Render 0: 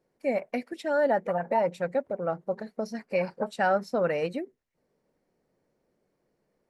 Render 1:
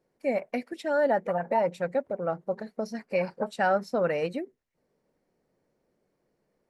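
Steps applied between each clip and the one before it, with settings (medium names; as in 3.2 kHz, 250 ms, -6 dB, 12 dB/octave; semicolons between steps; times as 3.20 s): no audible change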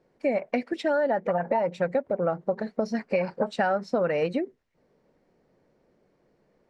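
compression 6:1, threshold -30 dBFS, peak gain reduction 10 dB; distance through air 94 m; trim +8.5 dB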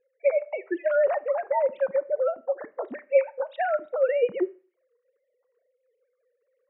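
formants replaced by sine waves; Schroeder reverb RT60 0.41 s, combs from 29 ms, DRR 18.5 dB; trim +1 dB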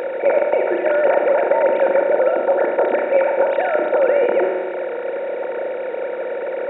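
spectral levelling over time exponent 0.2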